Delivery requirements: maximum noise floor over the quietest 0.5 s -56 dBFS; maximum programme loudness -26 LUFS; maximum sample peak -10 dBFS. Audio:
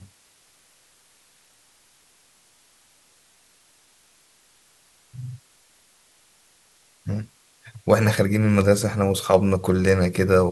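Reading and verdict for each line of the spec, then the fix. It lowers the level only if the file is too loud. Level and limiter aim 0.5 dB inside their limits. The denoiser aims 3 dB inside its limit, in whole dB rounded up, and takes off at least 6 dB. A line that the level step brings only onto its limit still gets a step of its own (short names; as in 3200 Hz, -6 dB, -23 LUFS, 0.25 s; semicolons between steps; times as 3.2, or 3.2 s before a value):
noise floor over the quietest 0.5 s -59 dBFS: OK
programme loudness -20.5 LUFS: fail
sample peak -2.0 dBFS: fail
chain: gain -6 dB; limiter -10.5 dBFS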